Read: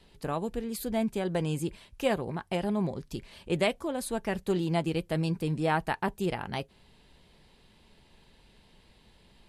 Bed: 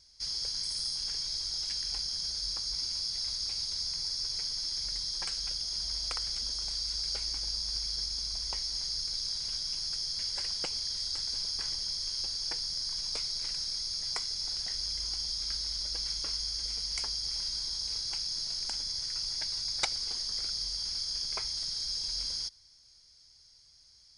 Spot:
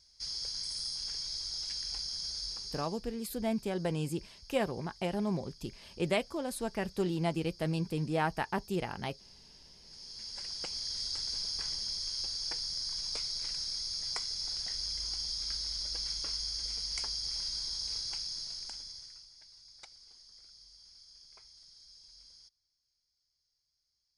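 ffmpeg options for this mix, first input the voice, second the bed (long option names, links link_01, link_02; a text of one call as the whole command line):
ffmpeg -i stem1.wav -i stem2.wav -filter_complex "[0:a]adelay=2500,volume=-3.5dB[link_01];[1:a]volume=17dB,afade=type=out:start_time=2.4:duration=0.62:silence=0.112202,afade=type=in:start_time=9.84:duration=1.15:silence=0.0944061,afade=type=out:start_time=17.98:duration=1.3:silence=0.1[link_02];[link_01][link_02]amix=inputs=2:normalize=0" out.wav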